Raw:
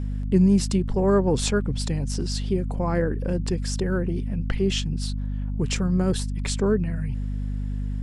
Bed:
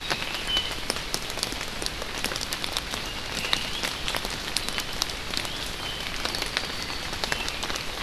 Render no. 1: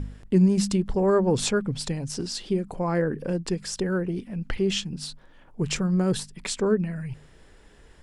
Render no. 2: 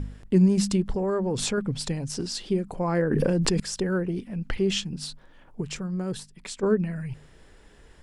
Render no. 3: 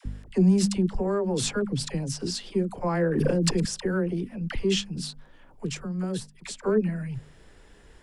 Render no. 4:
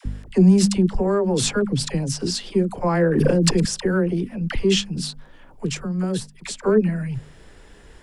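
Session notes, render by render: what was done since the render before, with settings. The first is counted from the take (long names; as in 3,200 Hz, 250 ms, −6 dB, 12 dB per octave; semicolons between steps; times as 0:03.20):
hum removal 50 Hz, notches 5
0:00.94–0:01.58: downward compressor 4 to 1, threshold −23 dBFS; 0:03.11–0:03.60: envelope flattener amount 100%; 0:05.61–0:06.63: clip gain −7 dB
soft clipping −9 dBFS, distortion −27 dB; all-pass dispersion lows, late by 57 ms, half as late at 640 Hz
level +6 dB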